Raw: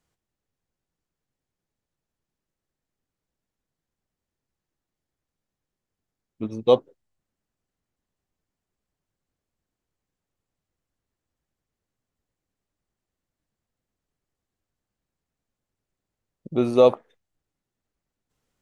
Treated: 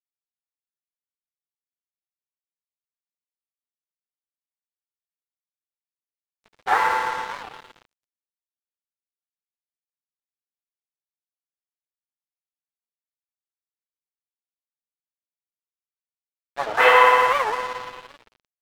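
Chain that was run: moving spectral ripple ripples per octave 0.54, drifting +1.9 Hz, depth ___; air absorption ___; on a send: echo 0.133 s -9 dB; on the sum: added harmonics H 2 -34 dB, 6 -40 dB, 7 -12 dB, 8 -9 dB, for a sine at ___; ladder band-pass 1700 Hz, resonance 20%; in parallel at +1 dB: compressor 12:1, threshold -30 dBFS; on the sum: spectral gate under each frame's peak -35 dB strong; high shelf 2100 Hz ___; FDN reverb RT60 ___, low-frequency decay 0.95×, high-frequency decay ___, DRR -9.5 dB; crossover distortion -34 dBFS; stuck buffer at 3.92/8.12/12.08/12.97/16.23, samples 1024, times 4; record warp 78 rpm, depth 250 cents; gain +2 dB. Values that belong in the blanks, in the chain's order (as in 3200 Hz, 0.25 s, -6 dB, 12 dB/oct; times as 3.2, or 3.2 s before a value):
21 dB, 75 m, 3 dBFS, -11.5 dB, 2.9 s, 0.75×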